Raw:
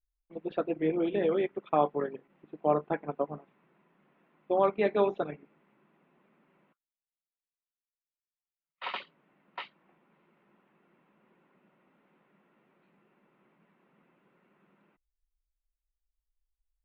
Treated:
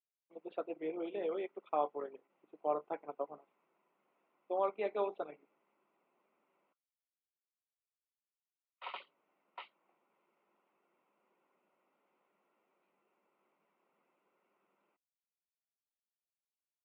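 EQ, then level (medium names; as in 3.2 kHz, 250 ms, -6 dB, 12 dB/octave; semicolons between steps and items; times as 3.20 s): band-pass 440–3200 Hz; peaking EQ 1.7 kHz -11.5 dB 0.32 oct; -6.5 dB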